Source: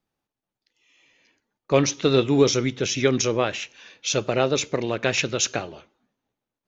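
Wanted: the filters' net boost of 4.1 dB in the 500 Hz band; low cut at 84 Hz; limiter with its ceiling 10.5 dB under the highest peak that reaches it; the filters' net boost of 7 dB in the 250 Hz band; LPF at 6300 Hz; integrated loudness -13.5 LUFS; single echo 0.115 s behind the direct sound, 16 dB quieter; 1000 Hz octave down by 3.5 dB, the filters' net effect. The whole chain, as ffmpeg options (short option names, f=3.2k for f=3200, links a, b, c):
-af "highpass=84,lowpass=6.3k,equalizer=f=250:t=o:g=7.5,equalizer=f=500:t=o:g=4,equalizer=f=1k:t=o:g=-7.5,alimiter=limit=-11dB:level=0:latency=1,aecho=1:1:115:0.158,volume=9dB"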